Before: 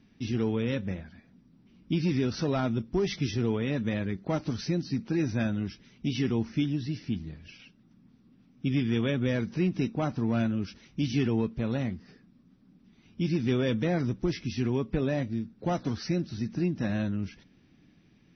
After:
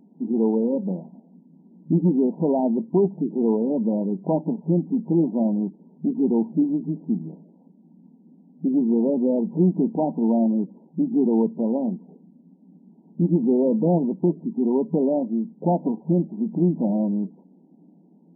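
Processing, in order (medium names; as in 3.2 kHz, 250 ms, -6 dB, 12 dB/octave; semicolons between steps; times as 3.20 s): FFT band-pass 160–990 Hz; trim +8.5 dB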